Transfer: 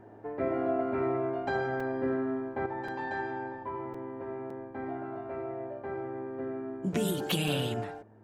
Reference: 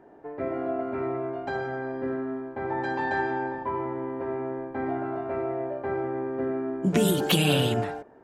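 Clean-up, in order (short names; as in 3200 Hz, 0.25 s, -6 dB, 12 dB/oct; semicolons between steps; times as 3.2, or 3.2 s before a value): de-hum 107.8 Hz, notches 3; interpolate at 1.8/2.88/3.94/4.5/6.94/7.48, 4 ms; gain correction +7.5 dB, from 2.66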